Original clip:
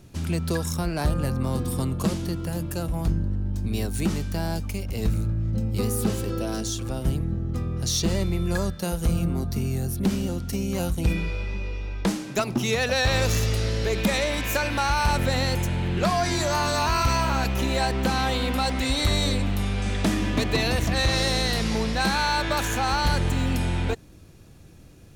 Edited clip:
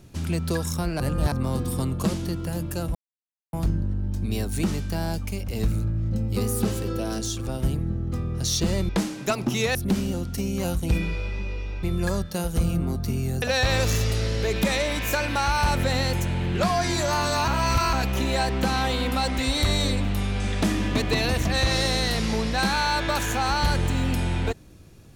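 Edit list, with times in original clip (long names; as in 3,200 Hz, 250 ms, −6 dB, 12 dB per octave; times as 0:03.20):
0:01.00–0:01.32: reverse
0:02.95: splice in silence 0.58 s
0:08.31–0:09.90: swap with 0:11.98–0:12.84
0:16.90–0:17.35: reverse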